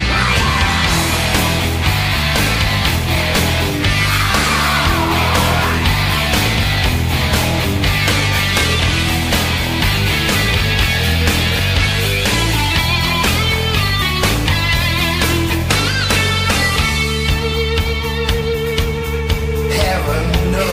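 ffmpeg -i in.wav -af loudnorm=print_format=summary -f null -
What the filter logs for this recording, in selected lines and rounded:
Input Integrated:    -14.8 LUFS
Input True Peak:      -2.0 dBTP
Input LRA:             3.2 LU
Input Threshold:     -24.8 LUFS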